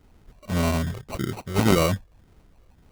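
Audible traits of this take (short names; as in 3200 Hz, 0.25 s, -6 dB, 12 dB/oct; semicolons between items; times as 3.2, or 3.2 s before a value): phasing stages 8, 1.8 Hz, lowest notch 240–3000 Hz; aliases and images of a low sample rate 1700 Hz, jitter 0%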